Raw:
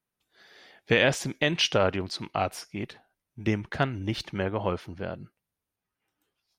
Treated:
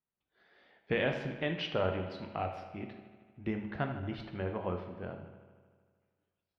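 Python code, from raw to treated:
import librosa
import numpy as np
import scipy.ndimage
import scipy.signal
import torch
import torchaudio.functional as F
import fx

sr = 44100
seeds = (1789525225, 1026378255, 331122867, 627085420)

y = fx.air_absorb(x, sr, metres=350.0)
y = fx.echo_bbd(y, sr, ms=77, stages=2048, feedback_pct=74, wet_db=-13.0)
y = fx.rev_plate(y, sr, seeds[0], rt60_s=0.74, hf_ratio=0.95, predelay_ms=0, drr_db=5.5)
y = y * librosa.db_to_amplitude(-8.0)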